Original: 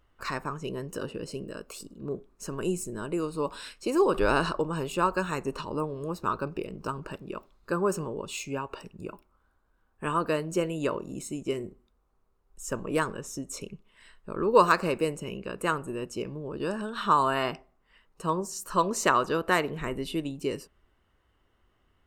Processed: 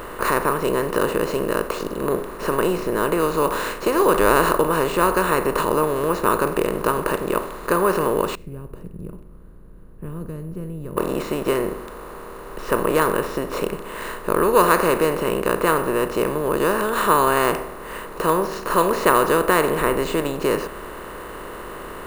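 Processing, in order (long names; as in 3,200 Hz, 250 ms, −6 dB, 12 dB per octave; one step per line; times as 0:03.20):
compressor on every frequency bin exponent 0.4
0:08.35–0:10.97: drawn EQ curve 170 Hz 0 dB, 250 Hz −10 dB, 920 Hz −27 dB
bad sample-rate conversion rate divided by 4×, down filtered, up hold
level +1 dB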